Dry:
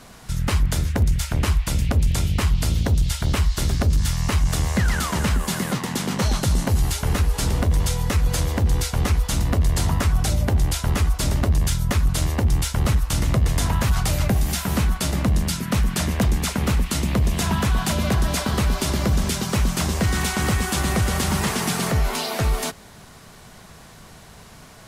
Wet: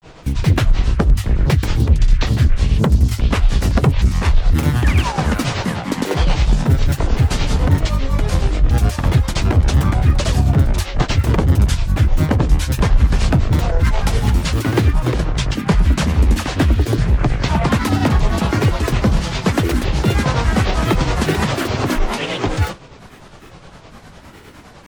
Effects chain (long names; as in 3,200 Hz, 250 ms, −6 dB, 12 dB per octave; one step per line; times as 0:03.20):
on a send at −13.5 dB: convolution reverb RT60 0.30 s, pre-delay 4 ms
on the sum: granular cloud 174 ms, grains 9.8 per second, pitch spread up and down by 12 semitones
low-pass filter 3,100 Hz 6 dB per octave
level +7.5 dB